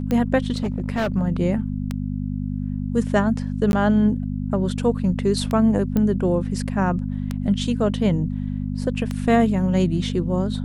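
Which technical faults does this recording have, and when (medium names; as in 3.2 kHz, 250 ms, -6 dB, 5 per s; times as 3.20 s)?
hum 50 Hz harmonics 5 -26 dBFS
tick 33 1/3 rpm -12 dBFS
0.54–1.12 s: clipped -19 dBFS
3.72–3.73 s: dropout 11 ms
5.97 s: pop -11 dBFS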